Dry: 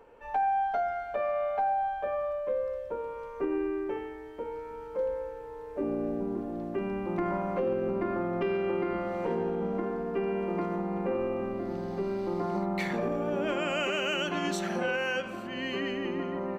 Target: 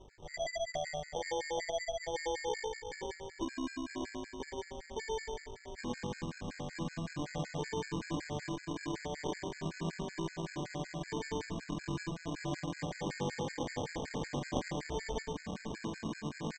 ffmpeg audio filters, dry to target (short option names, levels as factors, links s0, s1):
-af "lowshelf=f=170:g=9.5,bandreject=f=75.83:t=h:w=4,bandreject=f=151.66:t=h:w=4,bandreject=f=227.49:t=h:w=4,acompressor=threshold=0.0316:ratio=4,aexciter=amount=9.2:drive=2.9:freq=5600,asetrate=37084,aresample=44100,atempo=1.18921,aeval=exprs='val(0)+0.002*(sin(2*PI*50*n/s)+sin(2*PI*2*50*n/s)/2+sin(2*PI*3*50*n/s)/3+sin(2*PI*4*50*n/s)/4+sin(2*PI*5*50*n/s)/5)':c=same,aresample=16000,acrusher=samples=12:mix=1:aa=0.000001,aresample=44100,aecho=1:1:111|222|333|444:0.631|0.196|0.0606|0.0188,afftfilt=real='re*gt(sin(2*PI*5.3*pts/sr)*(1-2*mod(floor(b*sr/1024/1300),2)),0)':imag='im*gt(sin(2*PI*5.3*pts/sr)*(1-2*mod(floor(b*sr/1024/1300),2)),0)':win_size=1024:overlap=0.75,volume=0.631"